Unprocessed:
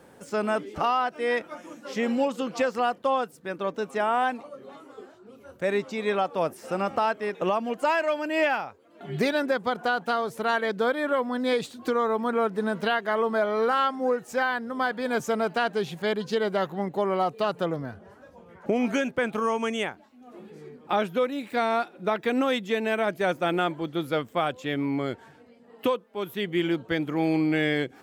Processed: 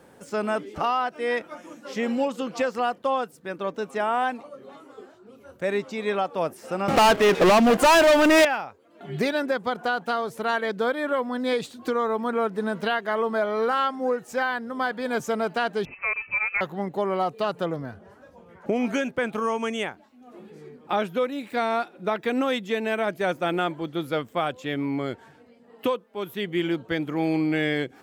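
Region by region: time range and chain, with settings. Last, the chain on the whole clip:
6.88–8.45 HPF 54 Hz 24 dB/oct + sample leveller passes 5
15.85–16.61 HPF 260 Hz + inverted band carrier 2800 Hz
whole clip: dry

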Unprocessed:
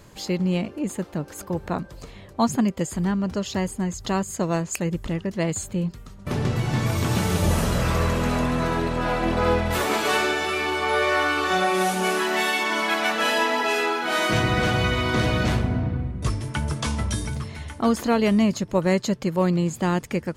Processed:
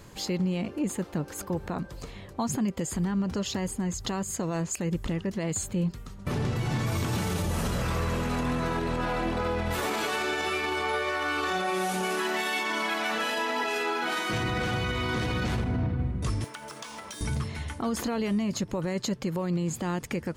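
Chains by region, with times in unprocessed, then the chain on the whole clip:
16.44–17.21 median filter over 3 samples + HPF 490 Hz + compressor 12:1, threshold -36 dBFS
whole clip: notch 620 Hz, Q 14; limiter -20.5 dBFS

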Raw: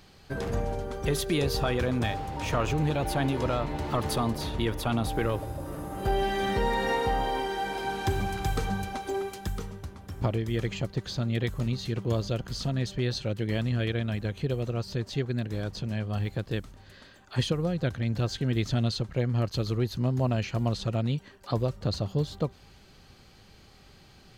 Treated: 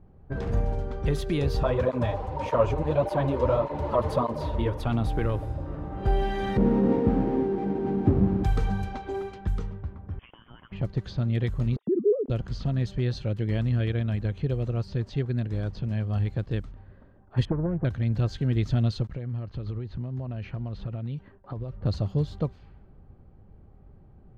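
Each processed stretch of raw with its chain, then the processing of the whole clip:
1.63–4.8 small resonant body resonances 570/980 Hz, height 15 dB, ringing for 25 ms + tape flanging out of phase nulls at 1.7 Hz, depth 7.7 ms
6.57–8.44 half-waves squared off + band-pass 240 Hz, Q 0.77 + small resonant body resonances 200/280 Hz, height 7 dB, ringing for 20 ms
10.19–10.72 HPF 430 Hz + compressor, threshold -36 dBFS + inverted band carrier 3400 Hz
11.76–12.3 sine-wave speech + compressor, threshold -28 dBFS + synth low-pass 420 Hz, resonance Q 4.1
17.45–17.85 inverse Chebyshev low-pass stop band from 8400 Hz, stop band 80 dB + Doppler distortion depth 0.55 ms
19.07–21.76 gate with hold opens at -41 dBFS, closes at -47 dBFS + compressor 12:1, threshold -31 dBFS
whole clip: LPF 2700 Hz 6 dB/oct; low-pass opened by the level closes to 650 Hz, open at -27 dBFS; low shelf 140 Hz +10 dB; gain -2 dB

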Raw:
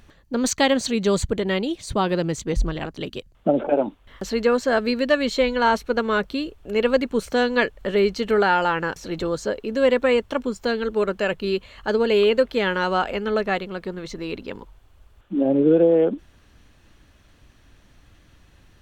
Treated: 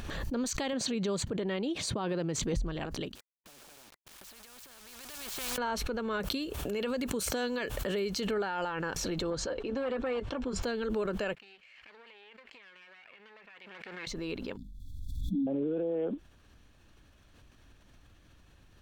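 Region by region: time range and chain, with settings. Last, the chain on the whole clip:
0.73–2.43 HPF 120 Hz + high shelf 5600 Hz -9.5 dB
3.15–5.58 compressor, threshold -33 dBFS + sample gate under -45 dBFS + spectral compressor 4:1
6.2–8.27 HPF 65 Hz + high shelf 5800 Hz +11.5 dB
9.3–10.63 air absorption 92 m + notch comb 210 Hz + core saturation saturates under 670 Hz
11.35–14.07 minimum comb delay 0.41 ms + band-pass 2100 Hz, Q 1.8 + compressor 8:1, threshold -44 dBFS
14.57–15.47 brick-wall FIR band-stop 300–3300 Hz + low shelf 460 Hz +7 dB + notches 50/100/150/200/250/300/350/400/450 Hz
whole clip: notch 2000 Hz, Q 18; limiter -18 dBFS; backwards sustainer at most 26 dB/s; gain -7.5 dB

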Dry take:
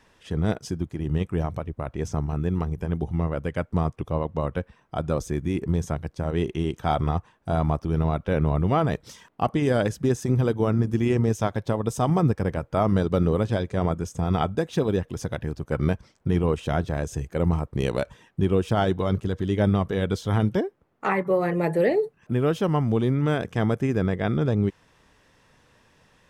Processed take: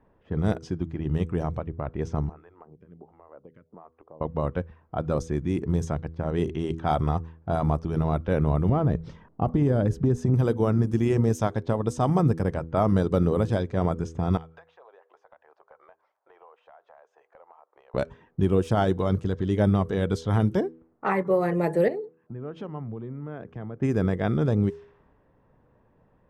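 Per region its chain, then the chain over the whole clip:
2.29–4.21 HPF 870 Hz 6 dB/oct + compressor 3:1, threshold -42 dBFS + photocell phaser 1.4 Hz
8.69–10.34 tilt -3 dB/oct + compressor 3:1, threshold -18 dBFS
14.37–17.94 inverse Chebyshev high-pass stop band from 210 Hz, stop band 60 dB + compressor 10:1, threshold -44 dBFS
21.88–23.82 compressor, threshold -31 dBFS + three-band expander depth 100%
whole clip: low-pass opened by the level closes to 770 Hz, open at -19 dBFS; de-hum 81.43 Hz, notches 6; dynamic EQ 2700 Hz, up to -5 dB, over -46 dBFS, Q 0.98

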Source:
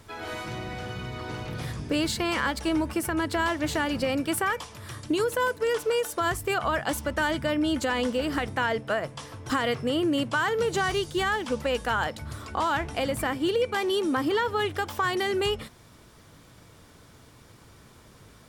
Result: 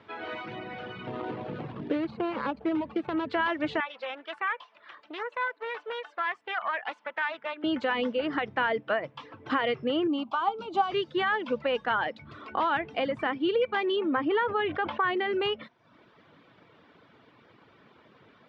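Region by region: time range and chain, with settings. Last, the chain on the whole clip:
1.07–3.27 median filter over 25 samples + three-band squash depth 70%
3.8–7.64 HPF 820 Hz + high shelf 3400 Hz -9 dB + Doppler distortion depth 0.35 ms
10.07–10.92 fixed phaser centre 490 Hz, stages 6 + small resonant body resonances 800/1200 Hz, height 10 dB, ringing for 90 ms
13.96–15.33 LPF 3000 Hz + sustainer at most 56 dB/s
whole clip: LPF 3300 Hz 24 dB/oct; reverb removal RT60 0.67 s; HPF 210 Hz 12 dB/oct

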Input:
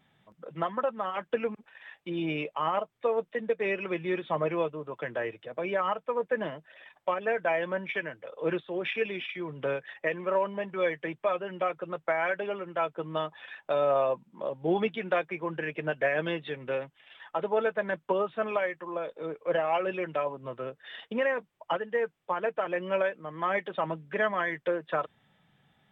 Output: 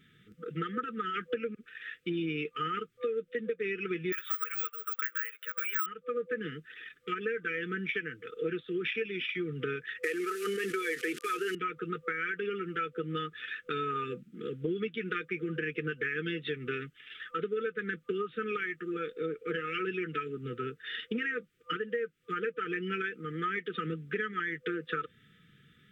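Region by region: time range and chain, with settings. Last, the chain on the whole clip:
4.12–5.86 HPF 800 Hz 24 dB/oct + bell 1400 Hz +10.5 dB 0.78 oct + careless resampling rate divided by 2×, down filtered, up zero stuff
10.03–11.55 CVSD 64 kbps + HPF 320 Hz 24 dB/oct + fast leveller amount 70%
whole clip: FFT band-reject 500–1200 Hz; compressor, threshold -36 dBFS; gain +5.5 dB

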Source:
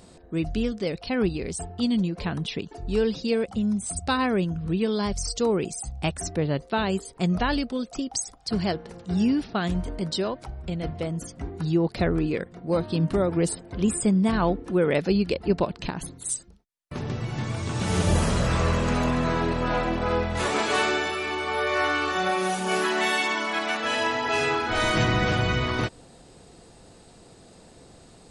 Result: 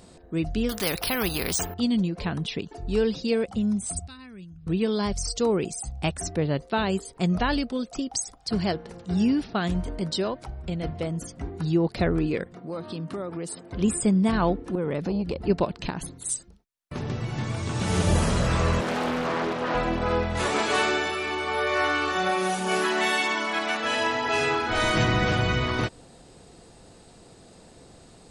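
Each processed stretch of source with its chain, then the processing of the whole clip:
0.69–1.74 careless resampling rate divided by 3×, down none, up hold + spectral compressor 2:1
4.07–4.67 passive tone stack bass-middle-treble 6-0-2 + notch 3100 Hz, Q 18
12.55–13.72 HPF 150 Hz + bell 1200 Hz +6.5 dB 0.2 oct + compressor 3:1, threshold -32 dBFS
14.75–15.46 low shelf 450 Hz +10 dB + compressor 4:1, threshold -24 dBFS + core saturation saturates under 300 Hz
18.81–19.75 Bessel high-pass 220 Hz, order 4 + high shelf 8800 Hz -7.5 dB + Doppler distortion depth 0.62 ms
whole clip: dry

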